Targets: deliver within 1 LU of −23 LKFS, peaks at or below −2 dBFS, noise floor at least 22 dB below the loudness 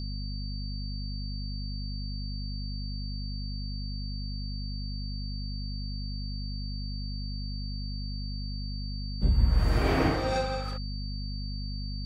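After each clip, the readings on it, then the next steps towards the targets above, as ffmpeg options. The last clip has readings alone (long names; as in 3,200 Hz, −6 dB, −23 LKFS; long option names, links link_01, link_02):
mains hum 50 Hz; hum harmonics up to 250 Hz; level of the hum −32 dBFS; interfering tone 4,600 Hz; level of the tone −42 dBFS; integrated loudness −33.5 LKFS; sample peak −11.5 dBFS; target loudness −23.0 LKFS
→ -af "bandreject=frequency=50:width_type=h:width=4,bandreject=frequency=100:width_type=h:width=4,bandreject=frequency=150:width_type=h:width=4,bandreject=frequency=200:width_type=h:width=4,bandreject=frequency=250:width_type=h:width=4"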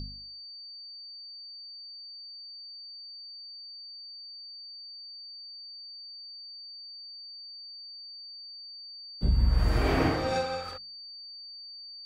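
mains hum none found; interfering tone 4,600 Hz; level of the tone −42 dBFS
→ -af "bandreject=frequency=4600:width=30"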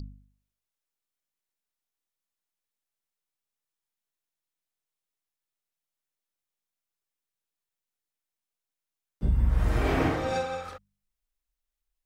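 interfering tone none found; integrated loudness −28.0 LKFS; sample peak −13.5 dBFS; target loudness −23.0 LKFS
→ -af "volume=5dB"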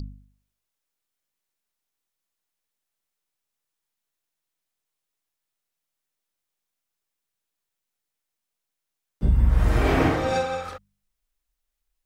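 integrated loudness −23.0 LKFS; sample peak −8.5 dBFS; background noise floor −84 dBFS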